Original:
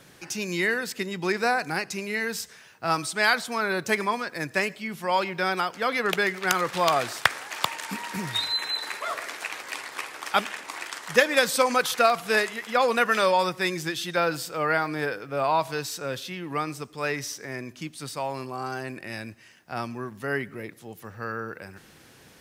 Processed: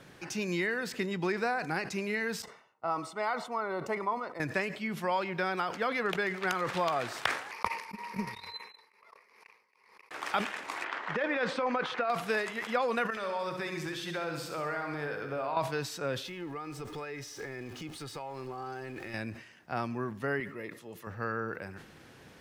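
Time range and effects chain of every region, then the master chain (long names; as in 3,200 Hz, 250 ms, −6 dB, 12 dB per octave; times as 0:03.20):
0:02.42–0:04.40: noise gate −43 dBFS, range −13 dB + Savitzky-Golay smoothing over 65 samples + spectral tilt +4.5 dB per octave
0:07.51–0:10.11: EQ curve with evenly spaced ripples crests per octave 0.86, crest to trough 13 dB + noise gate −24 dBFS, range −49 dB + background raised ahead of every attack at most 62 dB per second
0:10.84–0:12.10: low-pass filter 2,500 Hz + parametric band 84 Hz −14.5 dB 1.5 octaves + compressor whose output falls as the input rises −24 dBFS
0:13.10–0:15.57: mains-hum notches 60/120/180/240/300/360/420/480 Hz + downward compressor 4 to 1, threshold −32 dBFS + repeating echo 67 ms, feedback 60%, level −7.5 dB
0:16.26–0:19.14: converter with a step at zero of −41 dBFS + downward compressor 10 to 1, threshold −36 dBFS + comb filter 2.4 ms, depth 41%
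0:20.40–0:21.07: low-shelf EQ 370 Hz −9 dB + notch comb filter 760 Hz
whole clip: downward compressor 3 to 1, threshold −28 dBFS; high-shelf EQ 4,600 Hz −11.5 dB; level that may fall only so fast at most 100 dB per second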